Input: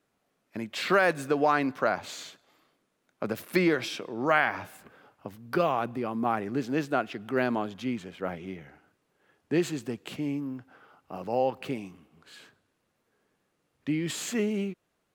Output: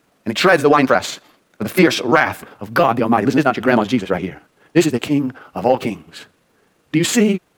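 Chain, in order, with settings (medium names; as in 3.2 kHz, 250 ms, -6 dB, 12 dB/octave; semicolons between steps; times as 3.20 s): granular stretch 0.5×, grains 84 ms; saturation -13 dBFS, distortion -23 dB; loudness maximiser +17.5 dB; trim -1 dB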